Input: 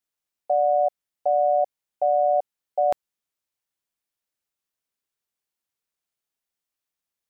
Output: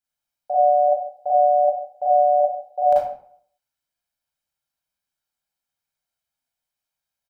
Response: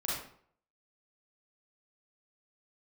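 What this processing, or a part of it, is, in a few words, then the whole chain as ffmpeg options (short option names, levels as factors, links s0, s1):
microphone above a desk: -filter_complex "[0:a]aecho=1:1:1.3:0.51[s0];[1:a]atrim=start_sample=2205[s1];[s0][s1]afir=irnorm=-1:irlink=0,volume=0.668"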